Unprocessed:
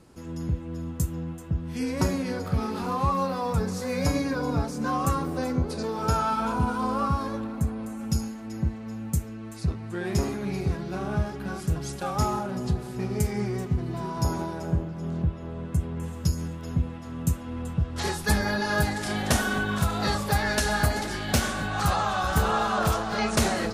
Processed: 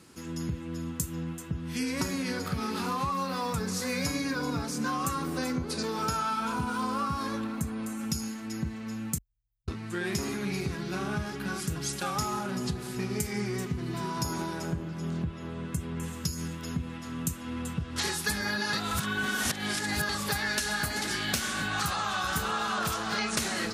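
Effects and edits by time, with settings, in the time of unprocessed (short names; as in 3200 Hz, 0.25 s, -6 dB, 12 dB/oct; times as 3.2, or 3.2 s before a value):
9.18–9.68 inverse Chebyshev band-stop 200–9200 Hz, stop band 80 dB
18.73–20.09 reverse
whole clip: HPF 340 Hz 6 dB/oct; bell 640 Hz -11 dB 1.5 oct; compressor, threshold -34 dBFS; gain +7 dB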